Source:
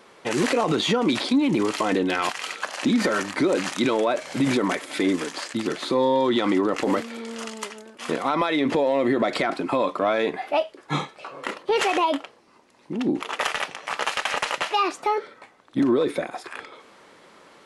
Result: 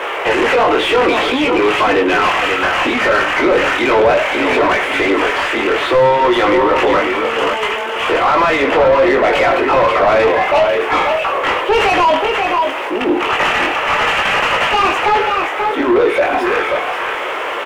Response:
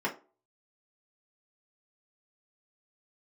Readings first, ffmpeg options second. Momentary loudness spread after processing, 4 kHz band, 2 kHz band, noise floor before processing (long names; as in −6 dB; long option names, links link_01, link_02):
5 LU, +10.0 dB, +15.0 dB, −54 dBFS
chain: -filter_complex "[0:a]aeval=exprs='val(0)+0.5*0.0211*sgn(val(0))':channel_layout=same,highpass=frequency=350:width=0.5412,highpass=frequency=350:width=1.3066,asoftclip=type=tanh:threshold=-17dB,highshelf=frequency=3500:width_type=q:width=3:gain=-6,flanger=delay=19:depth=3.7:speed=0.62,asplit=2[link_01][link_02];[link_02]aecho=0:1:77|105|534:0.141|0.133|0.398[link_03];[link_01][link_03]amix=inputs=2:normalize=0,asplit=2[link_04][link_05];[link_05]highpass=frequency=720:poles=1,volume=23dB,asoftclip=type=tanh:threshold=-10dB[link_06];[link_04][link_06]amix=inputs=2:normalize=0,lowpass=frequency=1200:poles=1,volume=-6dB,volume=8dB"